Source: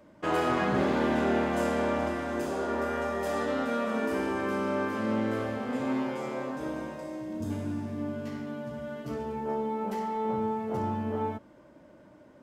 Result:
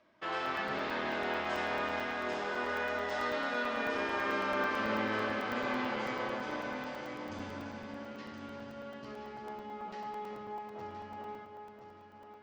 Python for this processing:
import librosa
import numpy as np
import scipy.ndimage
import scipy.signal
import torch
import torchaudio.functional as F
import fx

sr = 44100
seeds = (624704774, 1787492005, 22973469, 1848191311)

y = fx.doppler_pass(x, sr, speed_mps=16, closest_m=15.0, pass_at_s=4.7)
y = scipy.signal.sosfilt(scipy.signal.butter(4, 5200.0, 'lowpass', fs=sr, output='sos'), y)
y = fx.tilt_shelf(y, sr, db=-8.0, hz=680.0)
y = fx.rider(y, sr, range_db=4, speed_s=2.0)
y = fx.echo_heads(y, sr, ms=341, heads='first and third', feedback_pct=40, wet_db=-9.0)
y = fx.buffer_crackle(y, sr, first_s=0.46, period_s=0.11, block=128, kind='zero')